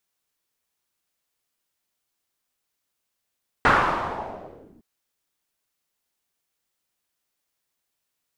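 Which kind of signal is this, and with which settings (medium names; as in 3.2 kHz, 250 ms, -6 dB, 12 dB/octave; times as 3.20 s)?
swept filtered noise white, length 1.16 s lowpass, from 1.4 kHz, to 230 Hz, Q 2.5, linear, gain ramp -32 dB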